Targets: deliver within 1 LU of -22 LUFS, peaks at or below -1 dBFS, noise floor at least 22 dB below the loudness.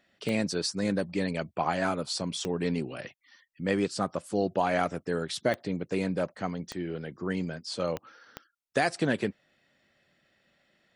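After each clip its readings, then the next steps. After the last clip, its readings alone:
clicks 6; loudness -31.0 LUFS; peak -12.5 dBFS; loudness target -22.0 LUFS
-> de-click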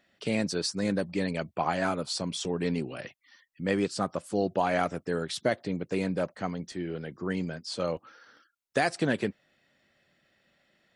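clicks 0; loudness -31.0 LUFS; peak -12.5 dBFS; loudness target -22.0 LUFS
-> gain +9 dB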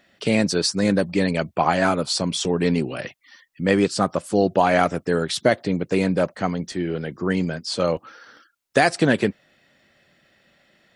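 loudness -22.0 LUFS; peak -3.5 dBFS; noise floor -63 dBFS

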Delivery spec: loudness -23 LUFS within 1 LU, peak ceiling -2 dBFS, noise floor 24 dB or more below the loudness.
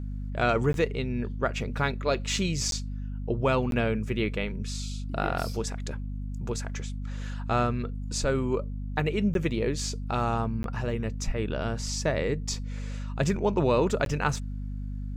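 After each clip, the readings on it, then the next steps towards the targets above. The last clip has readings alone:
dropouts 6; longest dropout 12 ms; hum 50 Hz; harmonics up to 250 Hz; hum level -31 dBFS; loudness -29.5 LUFS; peak -11.0 dBFS; loudness target -23.0 LUFS
-> interpolate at 0.73/2.71/3.71/9.34/10.63/14.05, 12 ms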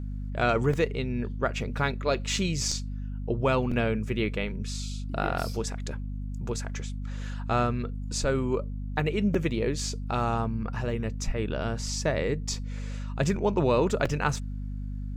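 dropouts 0; hum 50 Hz; harmonics up to 250 Hz; hum level -31 dBFS
-> notches 50/100/150/200/250 Hz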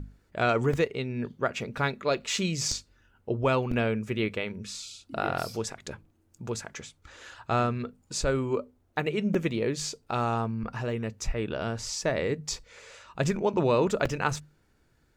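hum none; loudness -29.5 LUFS; peak -11.0 dBFS; loudness target -23.0 LUFS
-> gain +6.5 dB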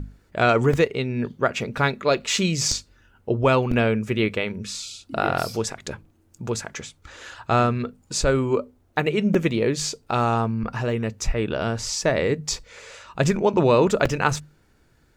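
loudness -23.0 LUFS; peak -4.5 dBFS; noise floor -60 dBFS

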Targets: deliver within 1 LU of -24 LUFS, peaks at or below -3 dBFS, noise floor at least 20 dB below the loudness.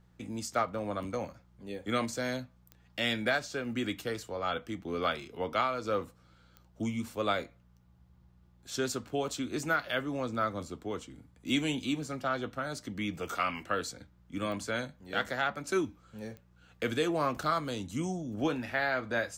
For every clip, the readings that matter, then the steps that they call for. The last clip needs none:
clicks 4; hum 60 Hz; harmonics up to 180 Hz; hum level -61 dBFS; loudness -33.5 LUFS; peak -16.5 dBFS; loudness target -24.0 LUFS
-> de-click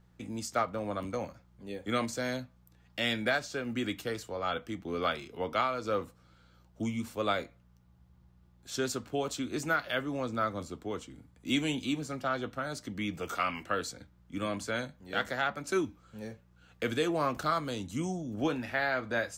clicks 0; hum 60 Hz; harmonics up to 180 Hz; hum level -61 dBFS
-> de-hum 60 Hz, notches 3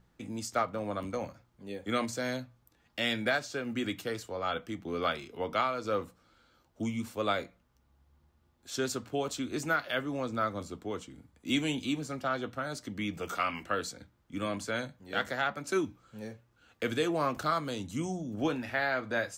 hum none; loudness -33.5 LUFS; peak -16.5 dBFS; loudness target -24.0 LUFS
-> gain +9.5 dB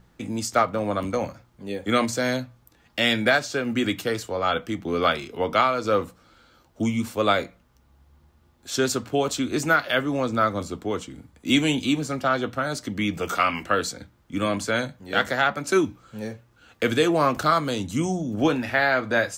loudness -24.0 LUFS; peak -7.0 dBFS; noise floor -61 dBFS

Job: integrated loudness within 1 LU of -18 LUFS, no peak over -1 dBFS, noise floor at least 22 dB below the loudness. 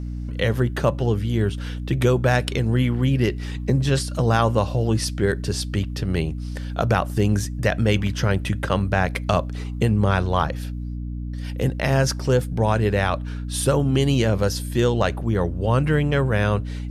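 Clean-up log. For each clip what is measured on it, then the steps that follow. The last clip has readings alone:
hum 60 Hz; harmonics up to 300 Hz; hum level -27 dBFS; loudness -22.0 LUFS; peak -4.0 dBFS; loudness target -18.0 LUFS
-> de-hum 60 Hz, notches 5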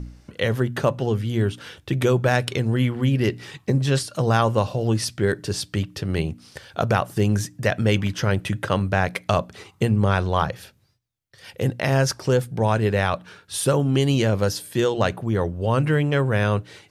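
hum none; loudness -22.5 LUFS; peak -4.5 dBFS; loudness target -18.0 LUFS
-> gain +4.5 dB; limiter -1 dBFS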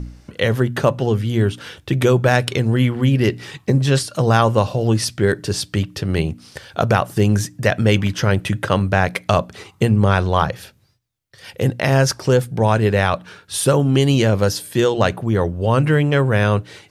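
loudness -18.0 LUFS; peak -1.0 dBFS; noise floor -53 dBFS

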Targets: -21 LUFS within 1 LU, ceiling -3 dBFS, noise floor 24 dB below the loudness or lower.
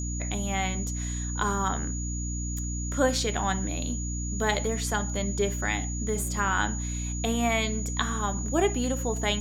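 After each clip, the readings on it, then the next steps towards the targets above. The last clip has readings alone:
hum 60 Hz; harmonics up to 300 Hz; hum level -30 dBFS; steady tone 6800 Hz; tone level -36 dBFS; loudness -28.5 LUFS; peak -8.0 dBFS; loudness target -21.0 LUFS
-> de-hum 60 Hz, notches 5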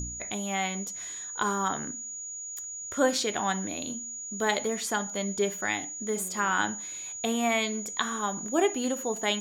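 hum none; steady tone 6800 Hz; tone level -36 dBFS
-> notch 6800 Hz, Q 30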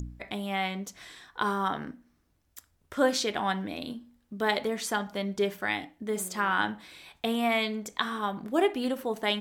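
steady tone none; loudness -30.0 LUFS; peak -9.0 dBFS; loudness target -21.0 LUFS
-> gain +9 dB; limiter -3 dBFS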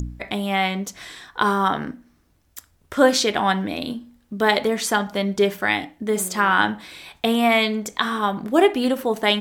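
loudness -21.0 LUFS; peak -3.0 dBFS; noise floor -61 dBFS

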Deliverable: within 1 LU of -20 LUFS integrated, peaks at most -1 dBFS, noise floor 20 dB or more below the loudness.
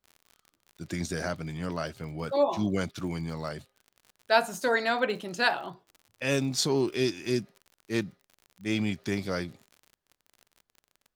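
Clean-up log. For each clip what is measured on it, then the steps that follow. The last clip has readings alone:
ticks 52/s; loudness -29.5 LUFS; peak -7.0 dBFS; loudness target -20.0 LUFS
-> de-click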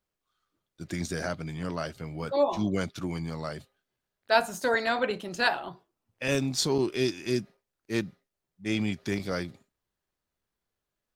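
ticks 0.090/s; loudness -29.5 LUFS; peak -7.0 dBFS; loudness target -20.0 LUFS
-> gain +9.5 dB; limiter -1 dBFS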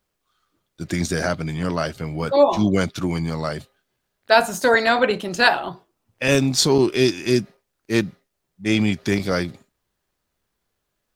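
loudness -20.5 LUFS; peak -1.0 dBFS; noise floor -77 dBFS

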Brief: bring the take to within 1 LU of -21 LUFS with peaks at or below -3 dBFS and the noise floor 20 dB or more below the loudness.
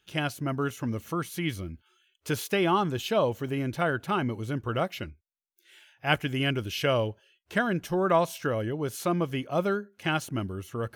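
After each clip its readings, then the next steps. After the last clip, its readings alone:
loudness -29.0 LUFS; peak -9.5 dBFS; loudness target -21.0 LUFS
-> gain +8 dB; limiter -3 dBFS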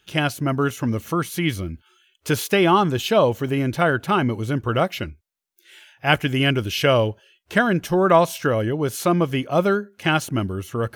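loudness -21.0 LUFS; peak -3.0 dBFS; noise floor -66 dBFS

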